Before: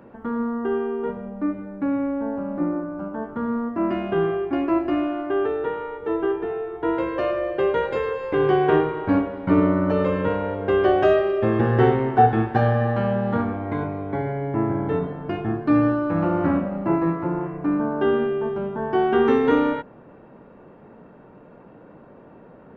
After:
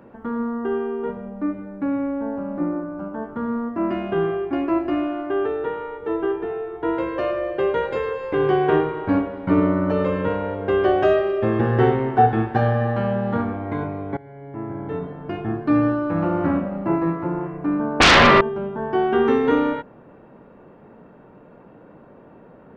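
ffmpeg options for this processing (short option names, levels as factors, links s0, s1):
-filter_complex "[0:a]asettb=1/sr,asplit=3[s0][s1][s2];[s0]atrim=end=18.004[s3];[s1]atrim=start=18:end=18.41,asetpts=PTS-STARTPTS,afade=t=in:d=0.004:c=qsin,afade=t=out:st=0.406:d=0.004:c=qsin,aeval=exprs='0.376*sin(PI/2*8.91*val(0)/0.376)':c=same[s4];[s2]atrim=start=18.406[s5];[s3][s4]acrossfade=d=0.004:c1=hsin:c2=qsin[s6];[s6][s5]acrossfade=d=0.004:c1=qsin:c2=hsin,asplit=2[s7][s8];[s7]atrim=end=14.17,asetpts=PTS-STARTPTS,afade=t=out:st=14.166:d=0.004:c=hsin:silence=0.0944061[s9];[s8]atrim=start=14.17,asetpts=PTS-STARTPTS,afade=t=in:d=1.41:silence=0.0944061[s10];[s9][s10]concat=n=2:v=0:a=1"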